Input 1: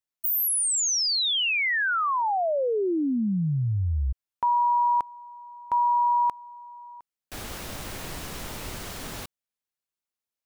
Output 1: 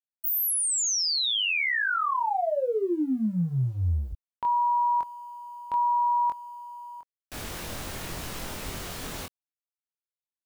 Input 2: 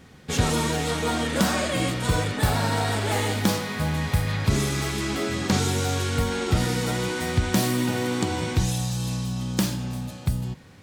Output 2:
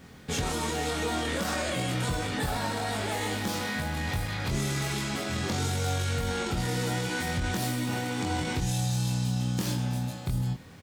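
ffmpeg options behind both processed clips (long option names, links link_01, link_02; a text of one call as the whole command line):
ffmpeg -i in.wav -filter_complex "[0:a]acompressor=threshold=-24dB:ratio=8:attack=0.47:release=41:knee=1:detection=rms,acrusher=bits=10:mix=0:aa=0.000001,asplit=2[link_01][link_02];[link_02]adelay=23,volume=-3dB[link_03];[link_01][link_03]amix=inputs=2:normalize=0,volume=-1.5dB" out.wav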